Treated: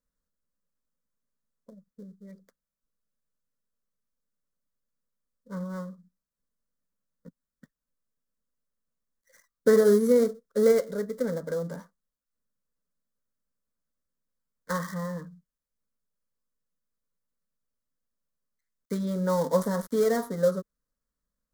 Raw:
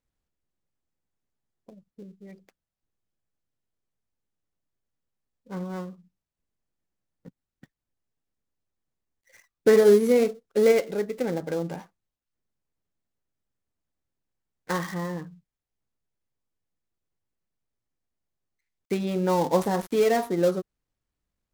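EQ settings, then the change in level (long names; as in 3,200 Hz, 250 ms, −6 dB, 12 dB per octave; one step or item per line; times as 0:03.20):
phaser with its sweep stopped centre 520 Hz, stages 8
0.0 dB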